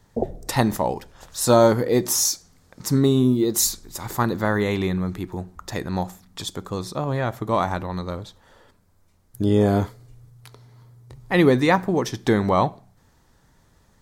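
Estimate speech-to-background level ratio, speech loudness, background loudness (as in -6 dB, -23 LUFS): 9.5 dB, -22.0 LUFS, -31.5 LUFS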